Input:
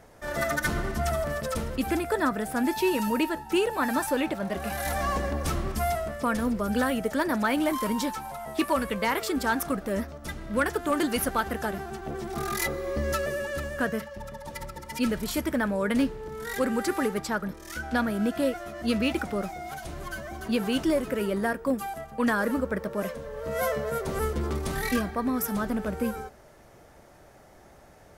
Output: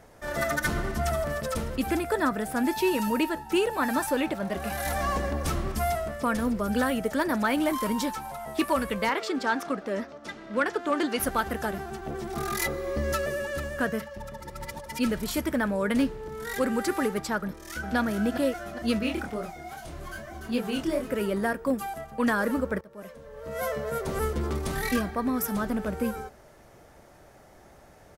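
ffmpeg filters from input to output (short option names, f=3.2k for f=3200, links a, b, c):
-filter_complex "[0:a]asettb=1/sr,asplit=3[a][b][c];[a]atrim=end=9.094[d];[b]atrim=start=9.09:end=11.2,asetpts=PTS-STARTPTS,afade=t=in:d=0.004:c=qsin,afade=t=out:st=2.106:d=0.004:c=qsin,acrossover=split=190 6800:gain=0.0708 1 0.1[e][f][g];[e][f][g]amix=inputs=3:normalize=0[h];[c]atrim=start=11.196[i];[d][h]acrossfade=d=0.004:c1=hsin:c2=qsin[j];[j][i]acrossfade=d=0.004:c1=qsin:c2=hsin,asplit=2[k][l];[l]afade=t=in:st=17.39:d=0.01,afade=t=out:st=17.96:d=0.01,aecho=0:1:410|820|1230|1640|2050|2460:0.446684|0.223342|0.111671|0.0558354|0.0279177|0.0139589[m];[k][m]amix=inputs=2:normalize=0,asettb=1/sr,asplit=3[n][o][p];[n]atrim=end=18.994[q];[o]atrim=start=18.99:end=21.11,asetpts=PTS-STARTPTS,afade=t=in:d=0.004:c=qsin,afade=t=out:st=2.116:d=0.004:c=qsin,flanger=delay=22.5:depth=5:speed=2.4[r];[p]atrim=start=21.106[s];[q][r]acrossfade=d=0.004:c1=hsin:c2=qsin[t];[t][s]acrossfade=d=0.004:c1=qsin:c2=hsin,asplit=4[u][v][w][x];[u]atrim=end=14.402[y];[v]atrim=start=14.398:end=14.862,asetpts=PTS-STARTPTS,areverse[z];[w]atrim=start=14.858:end=22.81,asetpts=PTS-STARTPTS,afade=t=out:st=7.948:d=0.004:c=hsin:silence=0.0944061[aa];[x]atrim=start=22.81,asetpts=PTS-STARTPTS,afade=t=in:d=1.26:silence=0.0944061[ab];[y][z]acrossfade=d=0.004:c1=hsin:c2=hsin[ac];[aa][ab]concat=n=2:v=0:a=1[ad];[ac][ad]acrossfade=d=0.004:c1=hsin:c2=hsin"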